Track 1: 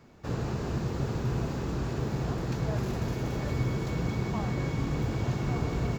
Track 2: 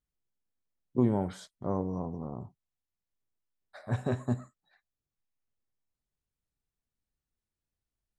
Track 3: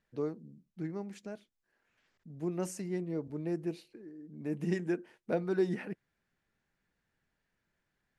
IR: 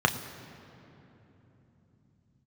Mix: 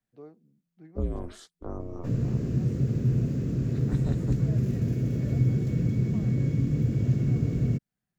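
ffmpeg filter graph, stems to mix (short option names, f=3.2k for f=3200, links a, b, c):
-filter_complex "[0:a]equalizer=f=125:t=o:w=1:g=10,equalizer=f=250:t=o:w=1:g=11,equalizer=f=500:t=o:w=1:g=7,equalizer=f=1k:t=o:w=1:g=-8,equalizer=f=2k:t=o:w=1:g=4,equalizer=f=4k:t=o:w=1:g=-6,adelay=1800,volume=-4.5dB[a];[1:a]aeval=exprs='val(0)*sin(2*PI*170*n/s)':c=same,volume=2.5dB[b];[2:a]lowpass=4.6k,equalizer=f=760:t=o:w=0.31:g=13.5,volume=-12.5dB[c];[a][b][c]amix=inputs=3:normalize=0,equalizer=f=830:t=o:w=0.23:g=-8.5,acrossover=split=210|3000[d][e][f];[e]acompressor=threshold=-39dB:ratio=2.5[g];[d][g][f]amix=inputs=3:normalize=0"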